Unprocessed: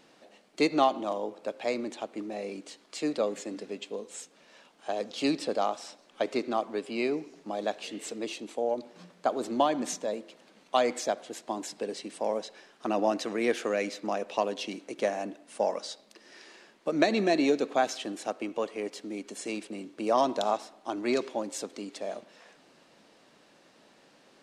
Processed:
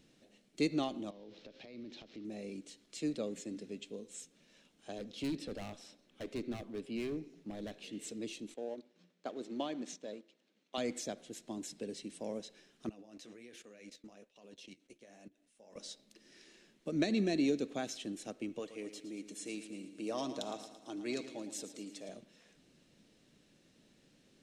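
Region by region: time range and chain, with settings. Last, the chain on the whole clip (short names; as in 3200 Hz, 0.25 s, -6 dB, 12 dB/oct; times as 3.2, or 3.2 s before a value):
1.1–2.25 switching spikes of -32.5 dBFS + steep low-pass 4800 Hz + compressor 12:1, threshold -38 dBFS
4.98–7.93 bell 7700 Hz -7 dB 1.2 oct + hard clip -28 dBFS
8.54–10.78 G.711 law mismatch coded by A + BPF 290–5400 Hz
12.89–15.76 low shelf 410 Hz -8.5 dB + level quantiser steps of 21 dB + flange 1.3 Hz, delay 3.9 ms, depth 9.8 ms, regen -47%
18.59–22.09 low shelf 190 Hz -12 dB + comb 6.4 ms, depth 34% + feedback echo 0.112 s, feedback 57%, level -12 dB
whole clip: passive tone stack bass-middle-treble 10-0-1; notch 4700 Hz, Q 14; gain +15 dB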